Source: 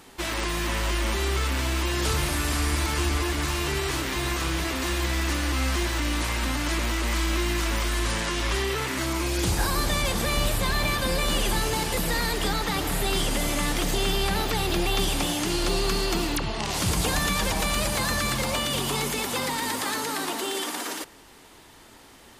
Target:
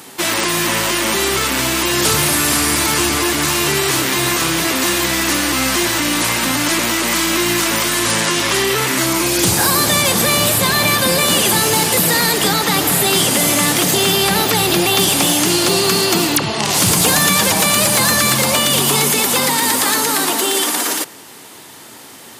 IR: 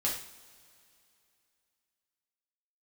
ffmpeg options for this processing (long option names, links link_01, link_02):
-filter_complex "[0:a]highpass=frequency=110:width=0.5412,highpass=frequency=110:width=1.3066,highshelf=frequency=7000:gain=9.5,asplit=2[link_01][link_02];[link_02]volume=19.5dB,asoftclip=hard,volume=-19.5dB,volume=-4dB[link_03];[link_01][link_03]amix=inputs=2:normalize=0,volume=6.5dB"